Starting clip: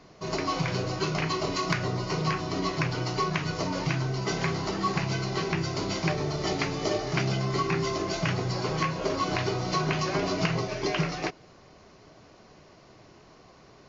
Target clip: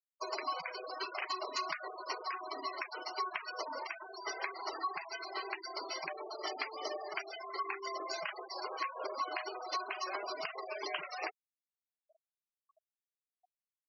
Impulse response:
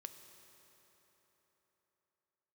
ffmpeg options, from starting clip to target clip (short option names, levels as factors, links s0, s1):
-af "acompressor=threshold=0.0158:ratio=6,highpass=670,afftfilt=real='re*gte(hypot(re,im),0.0112)':imag='im*gte(hypot(re,im),0.0112)':win_size=1024:overlap=0.75,volume=1.78"